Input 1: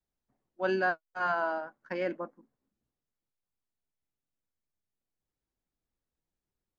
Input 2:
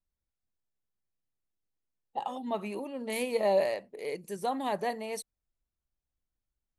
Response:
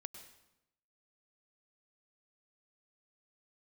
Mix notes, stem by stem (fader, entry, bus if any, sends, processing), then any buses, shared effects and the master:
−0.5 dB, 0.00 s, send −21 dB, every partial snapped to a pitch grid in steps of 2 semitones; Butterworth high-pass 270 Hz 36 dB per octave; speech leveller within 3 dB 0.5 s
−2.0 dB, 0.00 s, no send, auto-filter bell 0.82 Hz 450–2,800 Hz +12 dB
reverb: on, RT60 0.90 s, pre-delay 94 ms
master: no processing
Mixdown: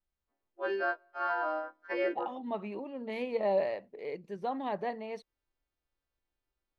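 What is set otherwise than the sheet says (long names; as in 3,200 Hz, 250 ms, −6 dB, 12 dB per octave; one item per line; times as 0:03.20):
stem 2: missing auto-filter bell 0.82 Hz 450–2,800 Hz +12 dB
master: extra high-frequency loss of the air 270 metres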